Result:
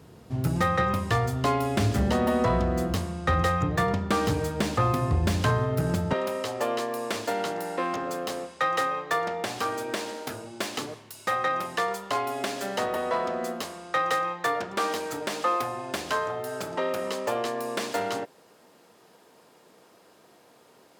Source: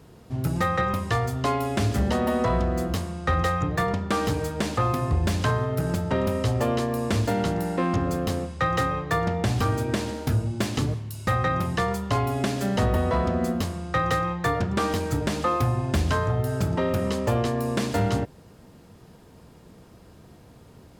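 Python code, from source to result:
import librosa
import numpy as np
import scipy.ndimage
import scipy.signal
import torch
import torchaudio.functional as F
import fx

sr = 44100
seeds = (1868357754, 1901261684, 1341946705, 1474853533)

y = fx.tracing_dist(x, sr, depth_ms=0.04)
y = fx.highpass(y, sr, hz=fx.steps((0.0, 61.0), (6.13, 440.0)), slope=12)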